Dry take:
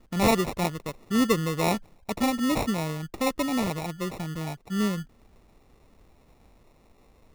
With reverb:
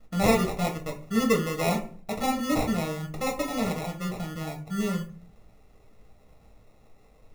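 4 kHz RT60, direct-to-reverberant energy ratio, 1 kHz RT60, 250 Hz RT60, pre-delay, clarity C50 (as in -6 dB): 0.25 s, 1.5 dB, 0.40 s, 0.60 s, 6 ms, 11.5 dB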